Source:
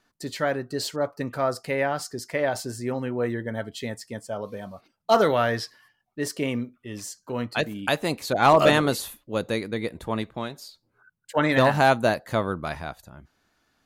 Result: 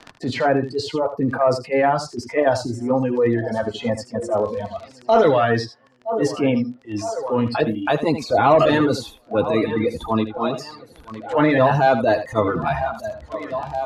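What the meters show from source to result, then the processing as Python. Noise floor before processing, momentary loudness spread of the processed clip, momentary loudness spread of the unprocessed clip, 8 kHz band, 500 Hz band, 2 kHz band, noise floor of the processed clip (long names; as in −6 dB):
−74 dBFS, 13 LU, 17 LU, −2.5 dB, +6.0 dB, +1.5 dB, −50 dBFS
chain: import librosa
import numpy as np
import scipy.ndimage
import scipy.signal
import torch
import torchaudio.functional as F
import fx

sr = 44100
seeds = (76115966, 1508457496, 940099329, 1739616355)

y = fx.transient(x, sr, attack_db=-11, sustain_db=6)
y = fx.echo_feedback(y, sr, ms=961, feedback_pct=58, wet_db=-18.0)
y = fx.noise_reduce_blind(y, sr, reduce_db=10)
y = fx.peak_eq(y, sr, hz=2000.0, db=-5.0, octaves=2.2)
y = 10.0 ** (-12.0 / 20.0) * np.tanh(y / 10.0 ** (-12.0 / 20.0))
y = fx.notch_comb(y, sr, f0_hz=190.0)
y = fx.dereverb_blind(y, sr, rt60_s=1.4)
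y = fx.peak_eq(y, sr, hz=770.0, db=7.5, octaves=2.8)
y = fx.dmg_crackle(y, sr, seeds[0], per_s=19.0, level_db=-44.0)
y = scipy.signal.sosfilt(scipy.signal.butter(2, 4700.0, 'lowpass', fs=sr, output='sos'), y)
y = y + 10.0 ** (-12.0 / 20.0) * np.pad(y, (int(77 * sr / 1000.0), 0))[:len(y)]
y = fx.band_squash(y, sr, depth_pct=70)
y = F.gain(torch.from_numpy(y), 7.0).numpy()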